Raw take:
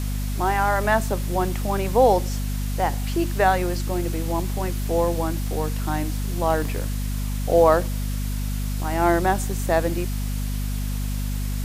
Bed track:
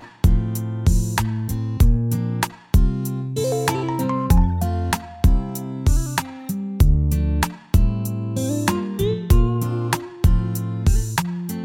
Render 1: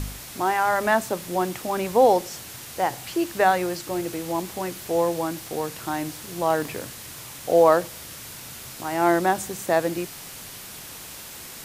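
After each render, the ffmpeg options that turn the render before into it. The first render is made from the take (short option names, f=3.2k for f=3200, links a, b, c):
-af "bandreject=f=50:t=h:w=4,bandreject=f=100:t=h:w=4,bandreject=f=150:t=h:w=4,bandreject=f=200:t=h:w=4,bandreject=f=250:t=h:w=4"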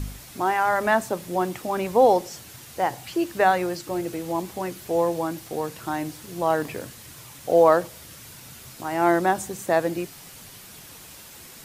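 -af "afftdn=nr=6:nf=-40"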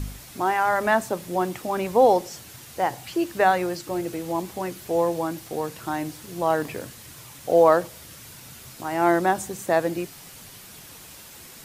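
-af anull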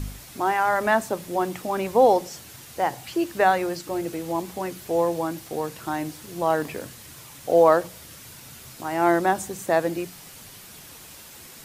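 -af "bandreject=f=60:t=h:w=6,bandreject=f=120:t=h:w=6,bandreject=f=180:t=h:w=6"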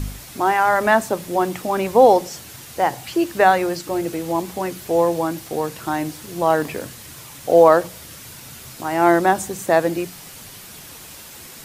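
-af "volume=5dB,alimiter=limit=-1dB:level=0:latency=1"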